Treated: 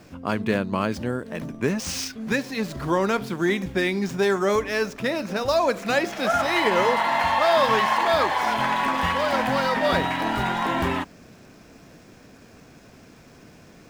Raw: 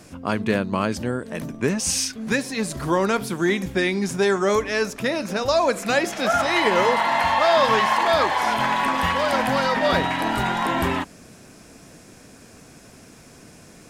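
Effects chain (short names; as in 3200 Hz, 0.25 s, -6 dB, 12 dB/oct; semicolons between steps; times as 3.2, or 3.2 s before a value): median filter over 5 samples; gain -1.5 dB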